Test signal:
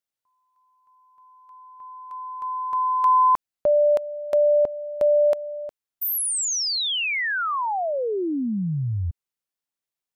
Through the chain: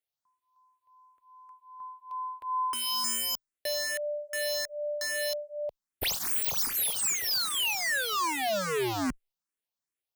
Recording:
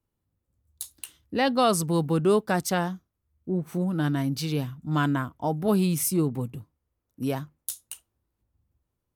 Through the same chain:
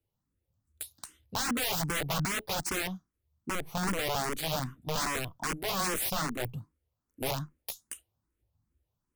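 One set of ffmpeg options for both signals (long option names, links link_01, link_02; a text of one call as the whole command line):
ffmpeg -i in.wav -filter_complex "[0:a]aeval=exprs='(mod(15*val(0)+1,2)-1)/15':channel_layout=same,asplit=2[link_01][link_02];[link_02]afreqshift=2.5[link_03];[link_01][link_03]amix=inputs=2:normalize=1" out.wav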